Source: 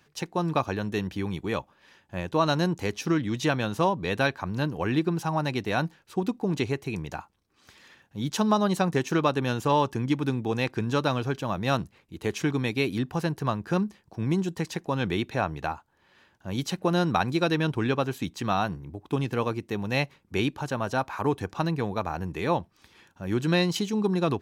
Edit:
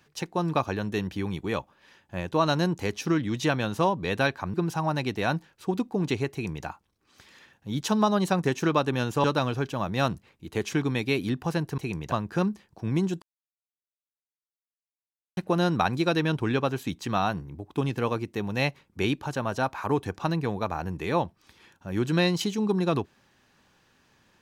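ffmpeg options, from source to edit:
ffmpeg -i in.wav -filter_complex "[0:a]asplit=7[link_01][link_02][link_03][link_04][link_05][link_06][link_07];[link_01]atrim=end=4.542[link_08];[link_02]atrim=start=5.028:end=9.732[link_09];[link_03]atrim=start=10.928:end=13.472[link_10];[link_04]atrim=start=6.808:end=7.152[link_11];[link_05]atrim=start=13.468:end=14.57,asetpts=PTS-STARTPTS,afade=type=out:start_time=1.098:duration=0.004:curve=hsin[link_12];[link_06]atrim=start=14.57:end=16.72,asetpts=PTS-STARTPTS,volume=0[link_13];[link_07]atrim=start=16.72,asetpts=PTS-STARTPTS,afade=type=in:duration=0.004:curve=hsin[link_14];[link_08][link_09]acrossfade=duration=0.004:curve1=hsin:curve2=hsin[link_15];[link_15][link_10]acrossfade=duration=0.004:curve1=hsin:curve2=hsin[link_16];[link_16][link_11]acrossfade=duration=0.004:curve1=hsin:curve2=hsin[link_17];[link_12][link_13][link_14]concat=n=3:v=0:a=1[link_18];[link_17][link_18]acrossfade=duration=0.004:curve1=hsin:curve2=hsin" out.wav

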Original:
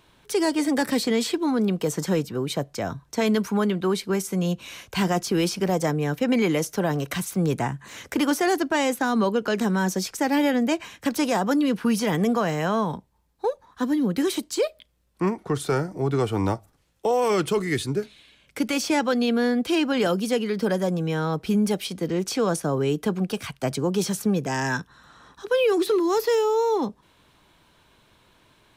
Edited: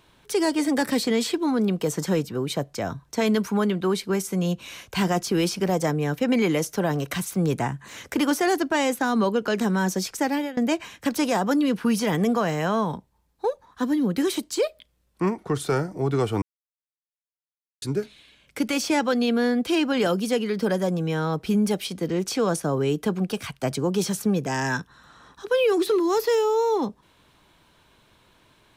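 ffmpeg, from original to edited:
ffmpeg -i in.wav -filter_complex "[0:a]asplit=4[link_01][link_02][link_03][link_04];[link_01]atrim=end=10.57,asetpts=PTS-STARTPTS,afade=type=out:start_time=10.23:duration=0.34:silence=0.0707946[link_05];[link_02]atrim=start=10.57:end=16.42,asetpts=PTS-STARTPTS,afade=type=in:duration=0.004:curve=hsin:silence=0.0707946,afade=type=out:start_time=5.846:duration=0.004:curve=hsin[link_06];[link_03]atrim=start=16.42:end=17.82,asetpts=PTS-STARTPTS,volume=0[link_07];[link_04]atrim=start=17.82,asetpts=PTS-STARTPTS,afade=type=in:duration=0.004:curve=hsin[link_08];[link_05][link_06][link_07][link_08]concat=n=4:v=0:a=1" out.wav

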